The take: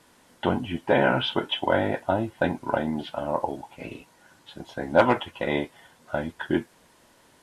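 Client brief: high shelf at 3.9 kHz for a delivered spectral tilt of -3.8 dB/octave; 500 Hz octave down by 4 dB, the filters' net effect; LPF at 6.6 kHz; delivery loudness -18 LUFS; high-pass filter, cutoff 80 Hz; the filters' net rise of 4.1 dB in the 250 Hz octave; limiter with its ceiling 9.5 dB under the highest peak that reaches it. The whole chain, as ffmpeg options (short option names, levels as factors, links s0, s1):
-af "highpass=80,lowpass=6600,equalizer=f=250:t=o:g=7,equalizer=f=500:t=o:g=-7,highshelf=f=3900:g=4,volume=3.55,alimiter=limit=0.562:level=0:latency=1"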